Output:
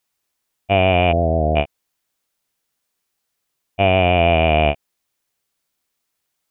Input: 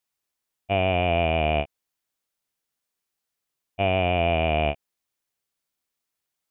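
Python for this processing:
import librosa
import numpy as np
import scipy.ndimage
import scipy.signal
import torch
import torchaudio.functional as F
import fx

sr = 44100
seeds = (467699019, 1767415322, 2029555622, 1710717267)

y = fx.steep_lowpass(x, sr, hz=660.0, slope=36, at=(1.11, 1.55), fade=0.02)
y = y * 10.0 ** (7.5 / 20.0)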